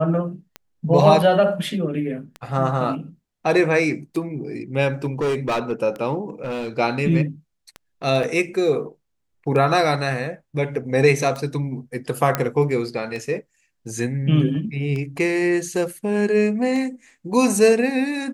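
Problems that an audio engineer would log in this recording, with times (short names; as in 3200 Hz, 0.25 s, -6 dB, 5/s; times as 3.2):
tick 33 1/3 rpm -18 dBFS
5.04–5.73 clipped -18 dBFS
6.3–6.69 clipped -23 dBFS
8.23 gap 3.2 ms
12.35 pop -5 dBFS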